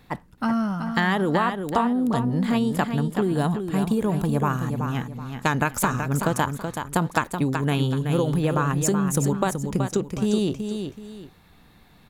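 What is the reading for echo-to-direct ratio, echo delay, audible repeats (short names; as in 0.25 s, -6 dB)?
-6.5 dB, 0.377 s, 2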